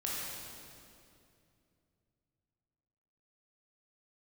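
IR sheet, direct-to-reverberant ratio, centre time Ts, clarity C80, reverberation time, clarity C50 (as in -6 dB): -6.0 dB, 147 ms, -1.0 dB, 2.6 s, -3.0 dB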